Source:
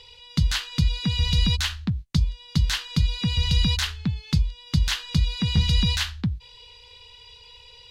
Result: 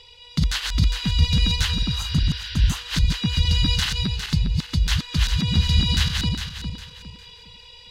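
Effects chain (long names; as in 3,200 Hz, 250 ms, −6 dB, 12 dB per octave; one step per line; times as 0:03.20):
feedback delay that plays each chunk backwards 203 ms, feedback 56%, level −2.5 dB
healed spectral selection 0:01.80–0:02.74, 1,400–5,800 Hz both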